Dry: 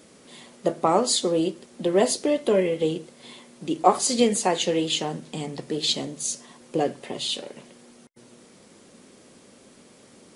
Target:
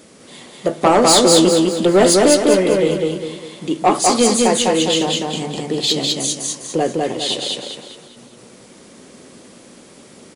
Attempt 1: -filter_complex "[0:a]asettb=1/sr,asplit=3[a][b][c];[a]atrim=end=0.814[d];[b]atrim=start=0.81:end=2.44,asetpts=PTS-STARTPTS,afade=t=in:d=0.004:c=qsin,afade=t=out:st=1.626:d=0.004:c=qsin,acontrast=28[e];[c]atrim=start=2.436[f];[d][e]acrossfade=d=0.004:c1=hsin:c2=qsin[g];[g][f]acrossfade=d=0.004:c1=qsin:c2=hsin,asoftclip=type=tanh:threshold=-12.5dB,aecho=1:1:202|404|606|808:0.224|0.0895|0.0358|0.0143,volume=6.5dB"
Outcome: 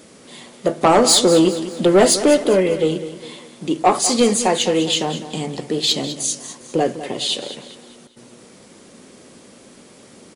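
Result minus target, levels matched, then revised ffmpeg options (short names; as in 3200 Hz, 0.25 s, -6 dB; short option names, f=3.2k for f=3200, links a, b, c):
echo-to-direct -11 dB
-filter_complex "[0:a]asettb=1/sr,asplit=3[a][b][c];[a]atrim=end=0.814[d];[b]atrim=start=0.81:end=2.44,asetpts=PTS-STARTPTS,afade=t=in:d=0.004:c=qsin,afade=t=out:st=1.626:d=0.004:c=qsin,acontrast=28[e];[c]atrim=start=2.436[f];[d][e]acrossfade=d=0.004:c1=hsin:c2=qsin[g];[g][f]acrossfade=d=0.004:c1=qsin:c2=hsin,asoftclip=type=tanh:threshold=-12.5dB,aecho=1:1:202|404|606|808|1010:0.794|0.318|0.127|0.0508|0.0203,volume=6.5dB"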